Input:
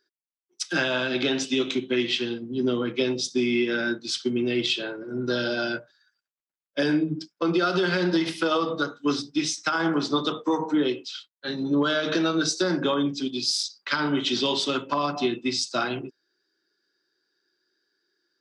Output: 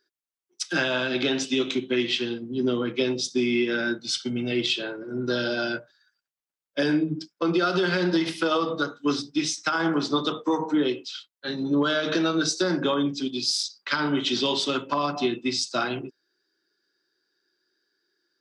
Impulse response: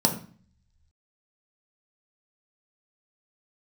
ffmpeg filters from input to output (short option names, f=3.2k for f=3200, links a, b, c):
-filter_complex "[0:a]asettb=1/sr,asplit=3[a][b][c];[a]atrim=end=3.994[d];[b]atrim=start=3.99:end=4.52,asetpts=PTS-STARTPTS,afade=t=in:d=0.004:c=qsin,afade=t=out:st=0.526:d=0.004:c=qsin,aecho=1:1:1.4:0.6,atrim=end_sample=23373[e];[c]atrim=start=4.516[f];[d][e]acrossfade=d=0.004:c1=hsin:c2=qsin[g];[g][f]acrossfade=d=0.004:c1=qsin:c2=hsin"